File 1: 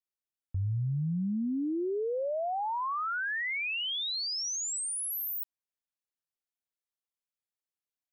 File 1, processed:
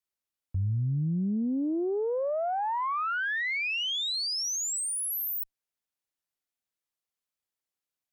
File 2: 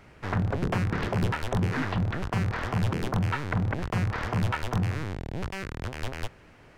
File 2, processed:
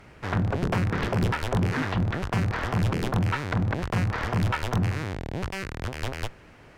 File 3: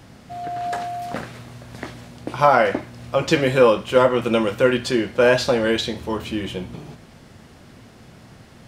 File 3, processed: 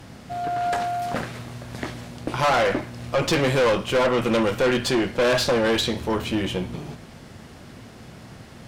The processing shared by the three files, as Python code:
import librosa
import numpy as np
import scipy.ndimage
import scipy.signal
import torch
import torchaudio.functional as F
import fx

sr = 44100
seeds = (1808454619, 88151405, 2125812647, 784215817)

y = fx.tube_stage(x, sr, drive_db=21.0, bias=0.45)
y = F.gain(torch.from_numpy(y), 4.5).numpy()